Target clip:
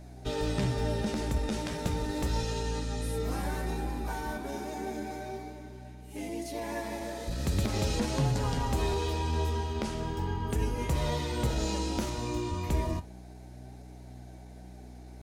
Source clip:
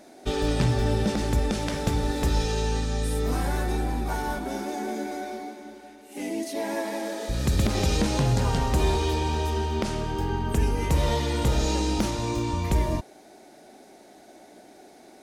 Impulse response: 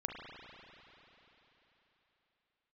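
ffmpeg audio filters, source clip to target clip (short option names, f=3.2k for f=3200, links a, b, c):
-af "aeval=exprs='val(0)+0.0112*(sin(2*PI*60*n/s)+sin(2*PI*2*60*n/s)/2+sin(2*PI*3*60*n/s)/3+sin(2*PI*4*60*n/s)/4+sin(2*PI*5*60*n/s)/5)':c=same,asetrate=45392,aresample=44100,atempo=0.971532,flanger=delay=6.6:depth=7.7:regen=65:speed=0.36:shape=triangular,volume=-1.5dB"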